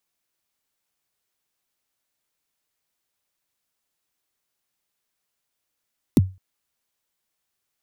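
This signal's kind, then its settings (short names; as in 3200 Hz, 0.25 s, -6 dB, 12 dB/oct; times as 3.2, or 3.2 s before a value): kick drum length 0.21 s, from 340 Hz, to 94 Hz, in 28 ms, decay 0.28 s, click on, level -7.5 dB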